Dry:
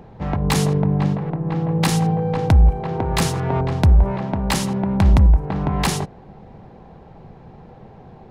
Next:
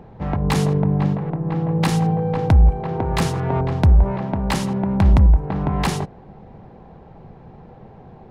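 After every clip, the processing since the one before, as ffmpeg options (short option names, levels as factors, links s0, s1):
-af "highshelf=f=3700:g=-7.5"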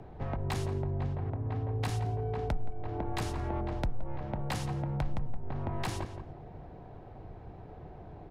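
-filter_complex "[0:a]asplit=2[s0][s1];[s1]adelay=172,lowpass=f=1900:p=1,volume=0.282,asplit=2[s2][s3];[s3]adelay=172,lowpass=f=1900:p=1,volume=0.18[s4];[s0][s2][s4]amix=inputs=3:normalize=0,afreqshift=-54,acompressor=threshold=0.0355:ratio=2.5,volume=0.562"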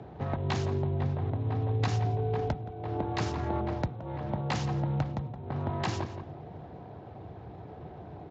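-af "volume=1.58" -ar 16000 -c:a libspeex -b:a 34k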